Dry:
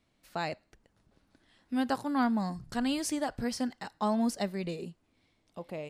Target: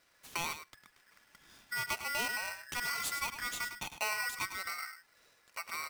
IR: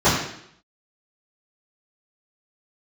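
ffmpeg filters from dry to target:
-af "acompressor=threshold=-46dB:ratio=2,equalizer=f=75:t=o:w=2.3:g=-14.5,aecho=1:1:104:0.316,aeval=exprs='val(0)*sgn(sin(2*PI*1700*n/s))':c=same,volume=6.5dB"

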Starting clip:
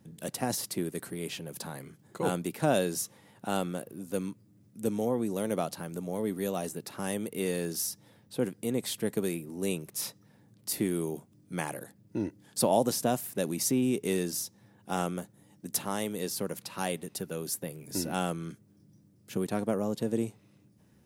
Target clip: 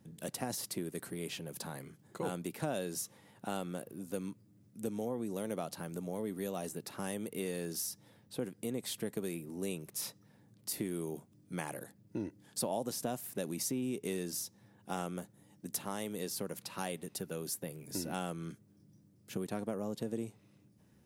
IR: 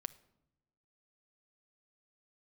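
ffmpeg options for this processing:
-af "acompressor=threshold=-32dB:ratio=2.5,volume=-3dB"

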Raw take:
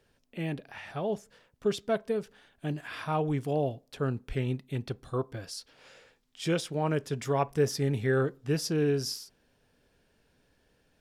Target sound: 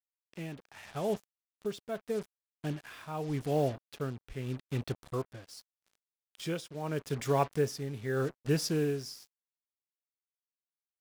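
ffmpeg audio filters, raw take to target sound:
-af "acrusher=bits=6:mix=0:aa=0.5,tremolo=f=0.82:d=0.69"

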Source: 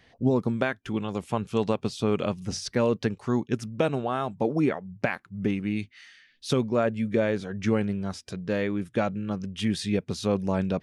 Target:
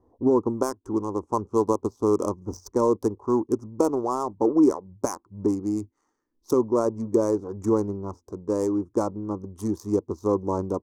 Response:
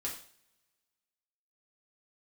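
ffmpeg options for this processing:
-af "adynamicsmooth=sensitivity=3.5:basefreq=860,firequalizer=gain_entry='entry(100,0);entry(140,-13);entry(320,9);entry(670,-4);entry(1000,10);entry(1600,-18);entry(2600,-25);entry(3800,-15);entry(6000,13);entry(11000,11)':delay=0.05:min_phase=1"

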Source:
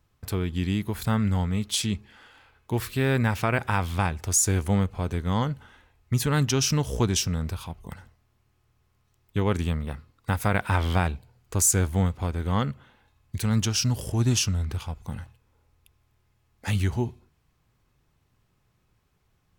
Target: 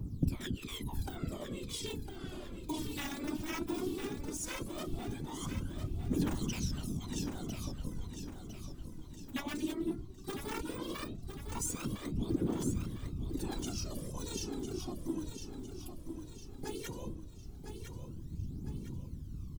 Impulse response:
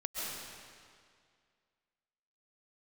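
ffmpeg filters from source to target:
-filter_complex "[0:a]deesser=0.95,afftfilt=real='re*lt(hypot(re,im),0.0891)':imag='im*lt(hypot(re,im),0.0891)':win_size=1024:overlap=0.75,lowshelf=f=370:t=q:w=3:g=11,acompressor=threshold=-46dB:ratio=4,acrossover=split=260|1100|3100[a][b][c][d];[c]acrusher=bits=6:mix=0:aa=0.000001[e];[a][b][e][d]amix=inputs=4:normalize=0,afftfilt=real='hypot(re,im)*cos(2*PI*random(0))':imag='hypot(re,im)*sin(2*PI*random(1))':win_size=512:overlap=0.75,aphaser=in_gain=1:out_gain=1:delay=3.6:decay=0.73:speed=0.16:type=triangular,aecho=1:1:1005|2010|3015|4020|5025:0.398|0.175|0.0771|0.0339|0.0149,volume=12dB"

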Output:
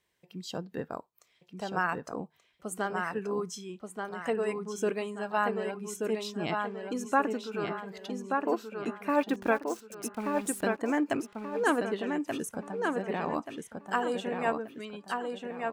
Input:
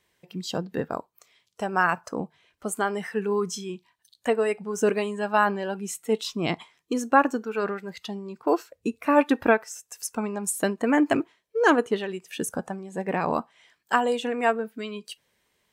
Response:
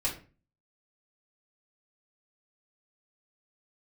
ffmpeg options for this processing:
-filter_complex "[0:a]asettb=1/sr,asplit=3[a][b][c];[a]atrim=end=9.094[d];[b]atrim=start=9.09:end=10.64,asetpts=PTS-STARTPTS,afade=t=in:d=0.004:c=qsin,afade=t=out:st=1.546:d=0.004:c=qsin,aeval=exprs='val(0)*gte(abs(val(0)),0.0133)':c=same[e];[c]atrim=start=10.636[f];[d][e]acrossfade=d=0.004:c1=hsin:c2=qsin[g];[g][f]acrossfade=d=0.004:c1=qsin:c2=hsin,asplit=2[h][i];[i]adelay=1181,lowpass=f=4.7k:p=1,volume=-4dB,asplit=2[j][k];[k]adelay=1181,lowpass=f=4.7k:p=1,volume=0.39,asplit=2[l][m];[m]adelay=1181,lowpass=f=4.7k:p=1,volume=0.39,asplit=2[n][o];[o]adelay=1181,lowpass=f=4.7k:p=1,volume=0.39,asplit=2[p][q];[q]adelay=1181,lowpass=f=4.7k:p=1,volume=0.39[r];[h][j][l][n][p][r]amix=inputs=6:normalize=0,volume=-7.5dB"

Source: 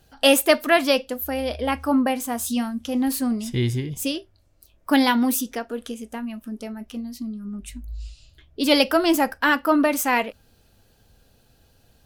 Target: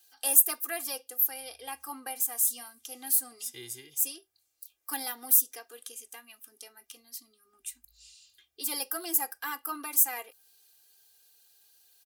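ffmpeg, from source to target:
-filter_complex "[0:a]aderivative,aecho=1:1:2.5:0.96,acrossover=split=180|1400|6800[a][b][c][d];[c]acompressor=threshold=-47dB:ratio=6[e];[a][b][e][d]amix=inputs=4:normalize=0"

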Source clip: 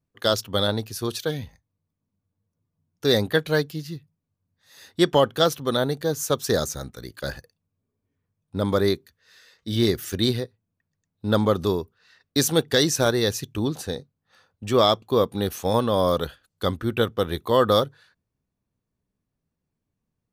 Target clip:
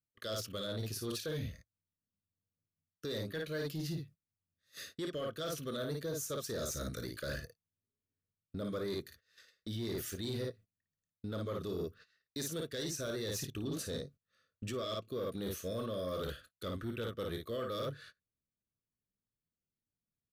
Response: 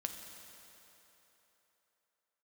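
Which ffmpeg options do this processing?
-filter_complex "[0:a]asplit=2[a][b];[b]aecho=0:1:26|55:0.251|0.473[c];[a][c]amix=inputs=2:normalize=0,agate=range=-23dB:threshold=-49dB:ratio=16:detection=peak,areverse,acompressor=threshold=-30dB:ratio=16,areverse,asuperstop=centerf=860:order=20:qfactor=2.2,asoftclip=type=tanh:threshold=-26.5dB,alimiter=level_in=13.5dB:limit=-24dB:level=0:latency=1:release=376,volume=-13.5dB,volume=6dB"

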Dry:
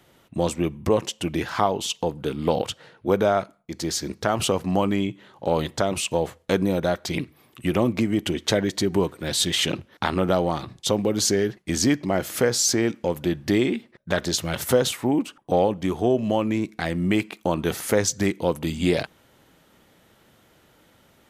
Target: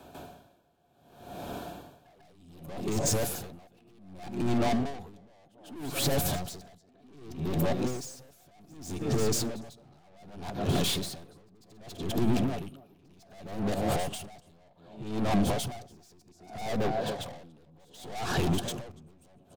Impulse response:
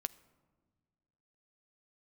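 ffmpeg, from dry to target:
-filter_complex "[0:a]areverse,acompressor=threshold=-25dB:ratio=6,equalizer=f=660:t=o:w=0.27:g=12.5,asetrate=48000,aresample=44100,asuperstop=centerf=2000:order=4:qfactor=4.7,aecho=1:1:281:0.106,aeval=exprs='(tanh(63.1*val(0)+0.1)-tanh(0.1))/63.1':c=same,tiltshelf=f=970:g=3.5,asplit=2[a][b];[1:a]atrim=start_sample=2205,adelay=146[c];[b][c]afir=irnorm=-1:irlink=0,volume=13dB[d];[a][d]amix=inputs=2:normalize=0,acrossover=split=200|3000[e][f][g];[f]acompressor=threshold=-30dB:ratio=6[h];[e][h][g]amix=inputs=3:normalize=0,alimiter=limit=-21.5dB:level=0:latency=1:release=66,aeval=exprs='val(0)*pow(10,-33*(0.5-0.5*cos(2*PI*0.65*n/s))/20)':c=same,volume=4.5dB"

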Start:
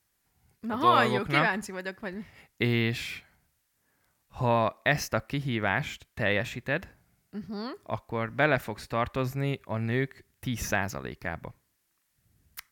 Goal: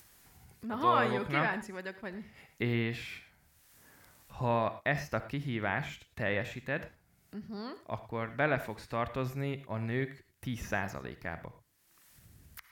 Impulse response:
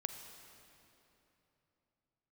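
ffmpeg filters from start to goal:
-filter_complex "[0:a]acrossover=split=2900[a][b];[b]acompressor=threshold=-43dB:ratio=4:attack=1:release=60[c];[a][c]amix=inputs=2:normalize=0[d];[1:a]atrim=start_sample=2205,atrim=end_sample=3969,asetrate=33516,aresample=44100[e];[d][e]afir=irnorm=-1:irlink=0,acompressor=mode=upward:threshold=-39dB:ratio=2.5,volume=-5dB"

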